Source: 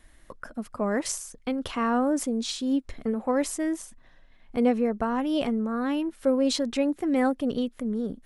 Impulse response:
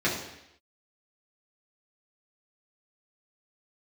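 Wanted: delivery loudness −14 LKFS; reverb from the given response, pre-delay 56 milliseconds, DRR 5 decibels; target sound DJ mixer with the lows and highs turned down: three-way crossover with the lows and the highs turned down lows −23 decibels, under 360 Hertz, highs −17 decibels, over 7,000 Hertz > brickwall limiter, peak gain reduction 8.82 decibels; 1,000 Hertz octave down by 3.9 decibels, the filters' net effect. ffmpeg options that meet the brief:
-filter_complex "[0:a]equalizer=frequency=1000:width_type=o:gain=-5,asplit=2[link_01][link_02];[1:a]atrim=start_sample=2205,adelay=56[link_03];[link_02][link_03]afir=irnorm=-1:irlink=0,volume=-18dB[link_04];[link_01][link_04]amix=inputs=2:normalize=0,acrossover=split=360 7000:gain=0.0708 1 0.141[link_05][link_06][link_07];[link_05][link_06][link_07]amix=inputs=3:normalize=0,volume=20.5dB,alimiter=limit=-4dB:level=0:latency=1"

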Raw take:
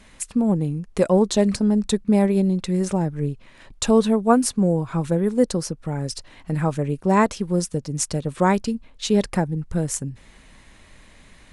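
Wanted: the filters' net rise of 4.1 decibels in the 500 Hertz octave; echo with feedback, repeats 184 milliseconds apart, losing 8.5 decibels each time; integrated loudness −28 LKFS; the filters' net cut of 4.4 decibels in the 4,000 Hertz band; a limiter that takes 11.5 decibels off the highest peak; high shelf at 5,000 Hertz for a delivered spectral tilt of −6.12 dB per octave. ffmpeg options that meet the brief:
ffmpeg -i in.wav -af "equalizer=frequency=500:width_type=o:gain=5,equalizer=frequency=4000:width_type=o:gain=-4,highshelf=frequency=5000:gain=-3,alimiter=limit=-13dB:level=0:latency=1,aecho=1:1:184|368|552|736:0.376|0.143|0.0543|0.0206,volume=-4.5dB" out.wav

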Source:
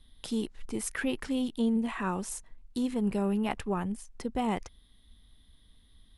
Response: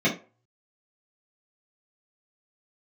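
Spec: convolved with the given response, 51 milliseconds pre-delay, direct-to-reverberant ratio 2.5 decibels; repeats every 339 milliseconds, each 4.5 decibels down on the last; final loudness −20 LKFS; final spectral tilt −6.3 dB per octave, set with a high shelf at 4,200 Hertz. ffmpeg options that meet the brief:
-filter_complex "[0:a]highshelf=frequency=4200:gain=-8,aecho=1:1:339|678|1017|1356|1695|2034|2373|2712|3051:0.596|0.357|0.214|0.129|0.0772|0.0463|0.0278|0.0167|0.01,asplit=2[link_01][link_02];[1:a]atrim=start_sample=2205,adelay=51[link_03];[link_02][link_03]afir=irnorm=-1:irlink=0,volume=-17.5dB[link_04];[link_01][link_04]amix=inputs=2:normalize=0,volume=4.5dB"

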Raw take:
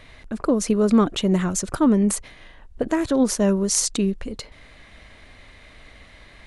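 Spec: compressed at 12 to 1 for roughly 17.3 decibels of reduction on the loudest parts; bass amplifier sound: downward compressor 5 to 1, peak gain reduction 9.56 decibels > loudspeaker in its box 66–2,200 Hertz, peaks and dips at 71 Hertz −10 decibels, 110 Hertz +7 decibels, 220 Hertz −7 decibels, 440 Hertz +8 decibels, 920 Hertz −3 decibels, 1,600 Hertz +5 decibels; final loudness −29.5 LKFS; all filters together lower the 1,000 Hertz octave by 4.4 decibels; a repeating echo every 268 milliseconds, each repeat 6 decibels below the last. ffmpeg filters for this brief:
ffmpeg -i in.wav -af "equalizer=frequency=1000:width_type=o:gain=-5,acompressor=threshold=-31dB:ratio=12,aecho=1:1:268|536|804|1072|1340|1608:0.501|0.251|0.125|0.0626|0.0313|0.0157,acompressor=threshold=-38dB:ratio=5,highpass=frequency=66:width=0.5412,highpass=frequency=66:width=1.3066,equalizer=frequency=71:width_type=q:width=4:gain=-10,equalizer=frequency=110:width_type=q:width=4:gain=7,equalizer=frequency=220:width_type=q:width=4:gain=-7,equalizer=frequency=440:width_type=q:width=4:gain=8,equalizer=frequency=920:width_type=q:width=4:gain=-3,equalizer=frequency=1600:width_type=q:width=4:gain=5,lowpass=frequency=2200:width=0.5412,lowpass=frequency=2200:width=1.3066,volume=14dB" out.wav

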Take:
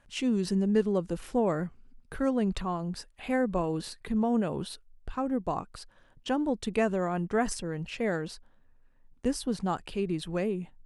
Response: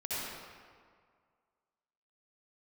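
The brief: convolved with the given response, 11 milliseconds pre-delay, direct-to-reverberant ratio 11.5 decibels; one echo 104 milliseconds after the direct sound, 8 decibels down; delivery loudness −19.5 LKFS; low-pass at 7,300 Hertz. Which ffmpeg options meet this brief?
-filter_complex "[0:a]lowpass=7300,aecho=1:1:104:0.398,asplit=2[link_01][link_02];[1:a]atrim=start_sample=2205,adelay=11[link_03];[link_02][link_03]afir=irnorm=-1:irlink=0,volume=-16.5dB[link_04];[link_01][link_04]amix=inputs=2:normalize=0,volume=10.5dB"

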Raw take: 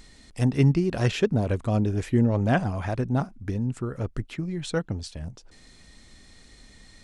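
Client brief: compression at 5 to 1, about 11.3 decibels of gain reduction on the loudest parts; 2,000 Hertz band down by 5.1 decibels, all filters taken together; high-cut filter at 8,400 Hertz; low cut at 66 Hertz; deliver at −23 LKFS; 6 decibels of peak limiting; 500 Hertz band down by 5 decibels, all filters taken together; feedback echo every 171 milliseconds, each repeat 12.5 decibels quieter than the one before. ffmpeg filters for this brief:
ffmpeg -i in.wav -af "highpass=66,lowpass=8400,equalizer=frequency=500:width_type=o:gain=-6.5,equalizer=frequency=2000:width_type=o:gain=-6.5,acompressor=threshold=-30dB:ratio=5,alimiter=level_in=3dB:limit=-24dB:level=0:latency=1,volume=-3dB,aecho=1:1:171|342|513:0.237|0.0569|0.0137,volume=13dB" out.wav

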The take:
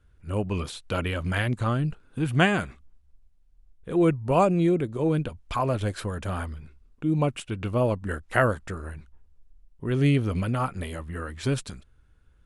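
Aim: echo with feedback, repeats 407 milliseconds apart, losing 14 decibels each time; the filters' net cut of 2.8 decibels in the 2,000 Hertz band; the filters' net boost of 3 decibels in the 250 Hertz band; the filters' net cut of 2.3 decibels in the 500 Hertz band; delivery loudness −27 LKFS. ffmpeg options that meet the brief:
ffmpeg -i in.wav -af "equalizer=frequency=250:width_type=o:gain=6.5,equalizer=frequency=500:width_type=o:gain=-5.5,equalizer=frequency=2000:width_type=o:gain=-3.5,aecho=1:1:407|814:0.2|0.0399,volume=-1.5dB" out.wav

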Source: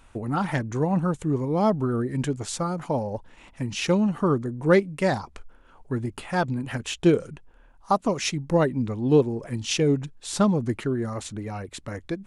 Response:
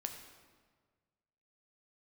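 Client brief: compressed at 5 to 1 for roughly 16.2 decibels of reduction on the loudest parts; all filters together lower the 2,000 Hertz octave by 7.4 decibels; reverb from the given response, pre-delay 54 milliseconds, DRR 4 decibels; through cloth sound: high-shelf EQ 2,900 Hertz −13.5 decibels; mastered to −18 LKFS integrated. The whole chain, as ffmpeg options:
-filter_complex "[0:a]equalizer=frequency=2000:width_type=o:gain=-4.5,acompressor=threshold=-32dB:ratio=5,asplit=2[link_01][link_02];[1:a]atrim=start_sample=2205,adelay=54[link_03];[link_02][link_03]afir=irnorm=-1:irlink=0,volume=-2.5dB[link_04];[link_01][link_04]amix=inputs=2:normalize=0,highshelf=frequency=2900:gain=-13.5,volume=17.5dB"

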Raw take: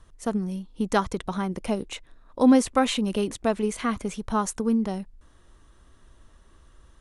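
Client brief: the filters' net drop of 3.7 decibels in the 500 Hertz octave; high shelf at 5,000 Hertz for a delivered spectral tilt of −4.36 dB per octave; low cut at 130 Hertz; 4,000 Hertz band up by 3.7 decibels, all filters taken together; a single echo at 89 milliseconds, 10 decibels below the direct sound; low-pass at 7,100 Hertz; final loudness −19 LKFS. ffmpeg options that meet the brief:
ffmpeg -i in.wav -af "highpass=130,lowpass=7100,equalizer=frequency=500:width_type=o:gain=-4.5,equalizer=frequency=4000:width_type=o:gain=3.5,highshelf=frequency=5000:gain=4,aecho=1:1:89:0.316,volume=7.5dB" out.wav

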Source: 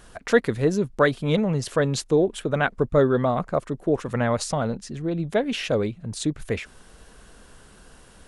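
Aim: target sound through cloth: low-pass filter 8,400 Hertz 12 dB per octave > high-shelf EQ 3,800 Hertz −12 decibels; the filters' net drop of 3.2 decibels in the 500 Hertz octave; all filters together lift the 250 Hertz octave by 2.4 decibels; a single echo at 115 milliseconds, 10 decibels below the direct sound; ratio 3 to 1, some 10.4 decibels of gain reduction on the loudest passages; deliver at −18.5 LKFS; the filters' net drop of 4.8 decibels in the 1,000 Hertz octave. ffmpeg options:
ffmpeg -i in.wav -af "equalizer=frequency=250:width_type=o:gain=4.5,equalizer=frequency=500:width_type=o:gain=-4,equalizer=frequency=1000:width_type=o:gain=-4.5,acompressor=threshold=-29dB:ratio=3,lowpass=8400,highshelf=frequency=3800:gain=-12,aecho=1:1:115:0.316,volume=13.5dB" out.wav

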